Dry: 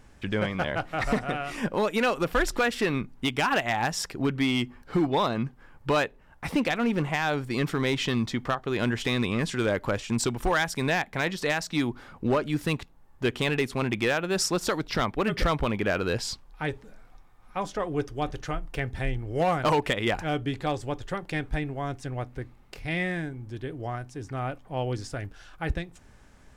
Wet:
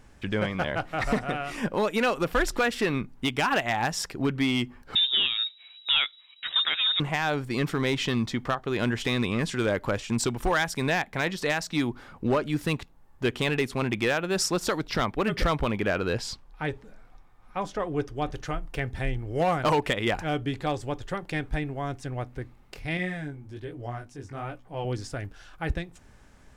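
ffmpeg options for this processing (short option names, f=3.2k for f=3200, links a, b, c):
-filter_complex "[0:a]asettb=1/sr,asplit=3[a][b][c];[a]atrim=end=4.954[d];[b]atrim=start=4.95:end=7,asetpts=PTS-STARTPTS,afade=t=in:d=0.004:c=qsin,afade=t=out:st=2.046:d=0.004:c=qsin,lowpass=f=3.3k:t=q:w=0.5098,lowpass=f=3.3k:t=q:w=0.6013,lowpass=f=3.3k:t=q:w=0.9,lowpass=f=3.3k:t=q:w=2.563,afreqshift=-3900[e];[c]atrim=start=6.996[f];[d][e]acrossfade=d=0.004:c1=hsin:c2=qsin[g];[g][f]acrossfade=d=0.004:c1=qsin:c2=hsin,asettb=1/sr,asplit=3[h][i][j];[h]atrim=end=15.904[k];[i]atrim=start=15.9:end=18.31,asetpts=PTS-STARTPTS,afade=t=in:d=0.004:c=qsin,afade=t=out:st=2.406:d=0.004:c=qsin,highshelf=f=5.5k:g=-5[l];[j]atrim=start=18.306[m];[k][l]acrossfade=d=0.004:c1=hsin:c2=qsin[n];[n][m]acrossfade=d=0.004:c1=qsin:c2=hsin,asettb=1/sr,asplit=3[o][p][q];[o]atrim=end=22.974[r];[p]atrim=start=22.97:end=24.85,asetpts=PTS-STARTPTS,afade=t=in:d=0.004:c=qsin,afade=t=out:st=1.876:d=0.004:c=qsin,flanger=delay=16:depth=5.8:speed=1.2[s];[q]atrim=start=24.846[t];[r][s]acrossfade=d=0.004:c1=hsin:c2=qsin[u];[u][t]acrossfade=d=0.004:c1=qsin:c2=hsin"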